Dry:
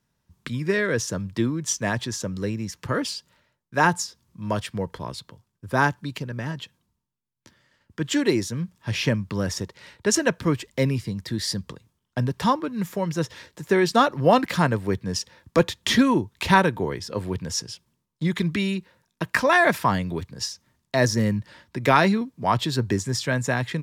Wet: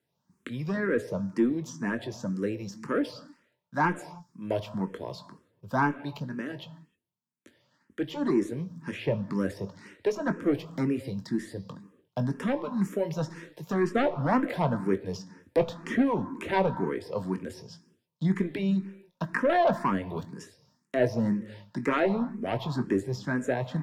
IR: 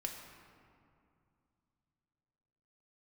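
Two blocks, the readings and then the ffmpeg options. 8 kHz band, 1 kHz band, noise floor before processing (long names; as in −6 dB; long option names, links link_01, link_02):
−19.5 dB, −7.5 dB, −77 dBFS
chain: -filter_complex "[0:a]highpass=190,tiltshelf=frequency=800:gain=3.5,acrossover=split=1800[link_01][link_02];[link_02]acompressor=threshold=-44dB:ratio=6[link_03];[link_01][link_03]amix=inputs=2:normalize=0,asoftclip=type=tanh:threshold=-14dB,asplit=2[link_04][link_05];[1:a]atrim=start_sample=2205,afade=type=out:start_time=0.34:duration=0.01,atrim=end_sample=15435,adelay=21[link_06];[link_05][link_06]afir=irnorm=-1:irlink=0,volume=-8.5dB[link_07];[link_04][link_07]amix=inputs=2:normalize=0,asplit=2[link_08][link_09];[link_09]afreqshift=2[link_10];[link_08][link_10]amix=inputs=2:normalize=1"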